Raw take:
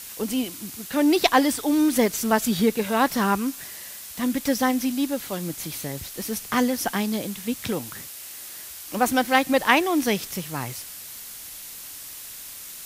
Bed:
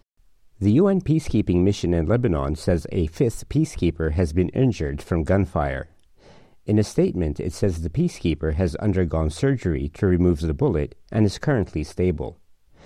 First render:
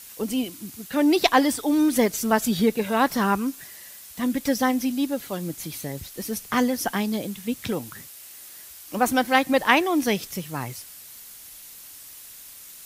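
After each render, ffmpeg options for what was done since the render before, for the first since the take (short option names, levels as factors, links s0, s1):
-af "afftdn=nr=6:nf=-39"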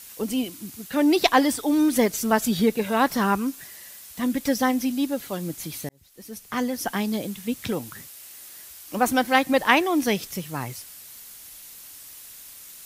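-filter_complex "[0:a]asplit=2[s0][s1];[s0]atrim=end=5.89,asetpts=PTS-STARTPTS,afade=t=out:st=5.886:d=0.004:c=hsin[s2];[s1]atrim=start=5.89,asetpts=PTS-STARTPTS,afade=t=in:d=1.2[s3];[s2][s3]concat=n=2:v=0:a=1"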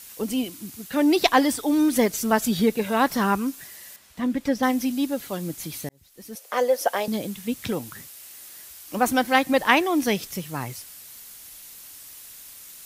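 -filter_complex "[0:a]asettb=1/sr,asplit=3[s0][s1][s2];[s0]atrim=end=3.964[s3];[s1]atrim=start=3.96:end=4.63,asetpts=PTS-STARTPTS,afade=t=in:d=0.004:c=qsin,afade=t=out:st=0.666:d=0.004:c=qsin,lowpass=f=2300:p=1[s4];[s2]atrim=start=4.626[s5];[s3][s4]acrossfade=d=0.004:c1=hsin:c2=qsin[s6];[s6][s5]acrossfade=d=0.004:c1=qsin:c2=hsin,asettb=1/sr,asplit=3[s7][s8][s9];[s7]atrim=end=6.354[s10];[s8]atrim=start=6.35:end=7.08,asetpts=PTS-STARTPTS,afade=t=in:d=0.004:c=qsin,afade=t=out:st=0.726:d=0.004:c=qsin,highpass=f=550:t=q:w=5.8[s11];[s9]atrim=start=7.076[s12];[s10][s11]acrossfade=d=0.004:c1=hsin:c2=qsin[s13];[s13][s12]acrossfade=d=0.004:c1=qsin:c2=hsin"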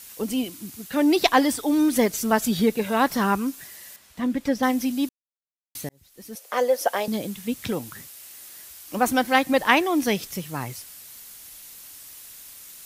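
-filter_complex "[0:a]asplit=3[s0][s1][s2];[s0]atrim=end=5.09,asetpts=PTS-STARTPTS,afade=t=out:st=5.086:d=0.004:c=hsin[s3];[s1]atrim=start=5.09:end=5.75,asetpts=PTS-STARTPTS,volume=0[s4];[s2]atrim=start=5.75,asetpts=PTS-STARTPTS,afade=t=in:d=0.004:c=hsin[s5];[s3][s4][s5]concat=n=3:v=0:a=1"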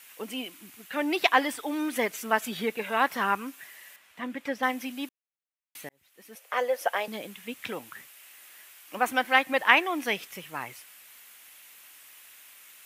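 -af "highpass=f=1000:p=1,highshelf=f=3500:t=q:w=1.5:g=-8.5"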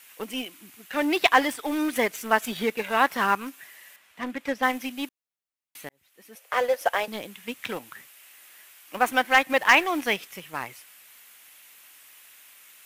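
-filter_complex "[0:a]asplit=2[s0][s1];[s1]acrusher=bits=4:mix=0:aa=0.5,volume=0.473[s2];[s0][s2]amix=inputs=2:normalize=0,asoftclip=type=hard:threshold=0.473"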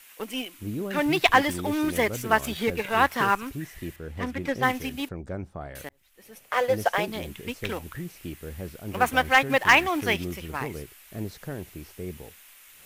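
-filter_complex "[1:a]volume=0.178[s0];[0:a][s0]amix=inputs=2:normalize=0"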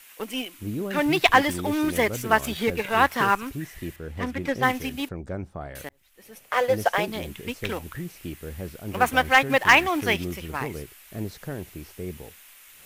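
-af "volume=1.19"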